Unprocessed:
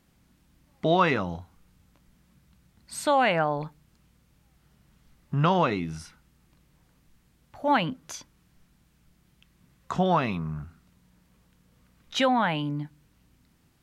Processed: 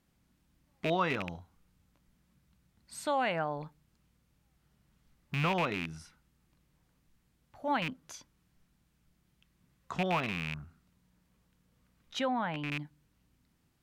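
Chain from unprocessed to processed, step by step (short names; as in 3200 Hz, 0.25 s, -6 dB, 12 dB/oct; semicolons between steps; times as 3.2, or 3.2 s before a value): rattling part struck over -28 dBFS, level -15 dBFS; 12.19–12.71 high shelf 3300 Hz -9 dB; gain -8.5 dB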